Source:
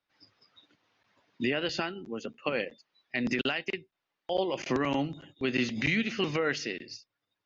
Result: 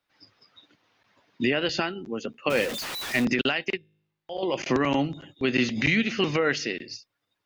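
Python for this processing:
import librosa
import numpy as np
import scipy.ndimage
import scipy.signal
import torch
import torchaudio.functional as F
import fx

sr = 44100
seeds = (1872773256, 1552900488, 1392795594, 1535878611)

y = fx.zero_step(x, sr, step_db=-32.5, at=(2.5, 3.25))
y = fx.comb_fb(y, sr, f0_hz=52.0, decay_s=0.87, harmonics='all', damping=0.0, mix_pct=80, at=(3.77, 4.43))
y = y * librosa.db_to_amplitude(5.0)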